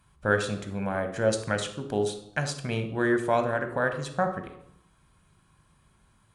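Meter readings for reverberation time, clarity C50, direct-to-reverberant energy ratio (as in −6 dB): 0.75 s, 9.0 dB, 6.5 dB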